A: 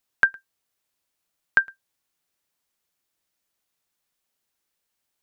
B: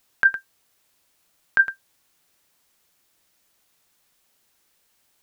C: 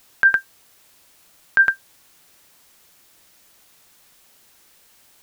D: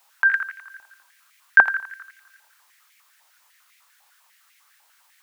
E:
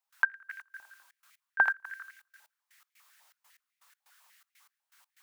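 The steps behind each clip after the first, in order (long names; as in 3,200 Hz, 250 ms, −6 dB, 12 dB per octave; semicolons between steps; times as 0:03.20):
compressor whose output falls as the input rises −20 dBFS, ratio −0.5; level +7.5 dB
boost into a limiter +18 dB; level −6 dB
delay with a low-pass on its return 85 ms, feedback 61%, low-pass 3,300 Hz, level −9 dB; high-pass on a step sequencer 10 Hz 850–2,100 Hz; level −7 dB
gate pattern ".x..x.xxx" 122 BPM −24 dB; level −3.5 dB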